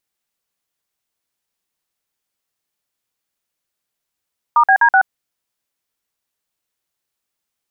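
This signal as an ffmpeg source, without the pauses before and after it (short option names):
-f lavfi -i "aevalsrc='0.299*clip(min(mod(t,0.126),0.076-mod(t,0.126))/0.002,0,1)*(eq(floor(t/0.126),0)*(sin(2*PI*941*mod(t,0.126))+sin(2*PI*1209*mod(t,0.126)))+eq(floor(t/0.126),1)*(sin(2*PI*770*mod(t,0.126))+sin(2*PI*1633*mod(t,0.126)))+eq(floor(t/0.126),2)*(sin(2*PI*941*mod(t,0.126))+sin(2*PI*1633*mod(t,0.126)))+eq(floor(t/0.126),3)*(sin(2*PI*770*mod(t,0.126))+sin(2*PI*1477*mod(t,0.126))))':d=0.504:s=44100"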